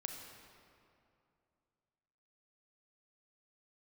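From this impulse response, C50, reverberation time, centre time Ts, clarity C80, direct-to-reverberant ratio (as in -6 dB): 3.5 dB, 2.6 s, 68 ms, 4.5 dB, 2.5 dB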